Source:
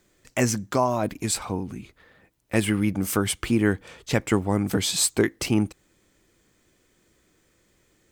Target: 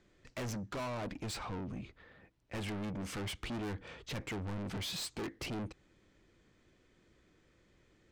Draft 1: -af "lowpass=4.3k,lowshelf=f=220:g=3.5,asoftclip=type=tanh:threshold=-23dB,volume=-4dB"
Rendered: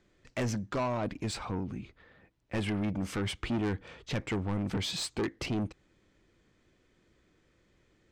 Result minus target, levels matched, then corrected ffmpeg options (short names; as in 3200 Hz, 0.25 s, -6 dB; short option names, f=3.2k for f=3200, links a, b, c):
soft clip: distortion -5 dB
-af "lowpass=4.3k,lowshelf=f=220:g=3.5,asoftclip=type=tanh:threshold=-33dB,volume=-4dB"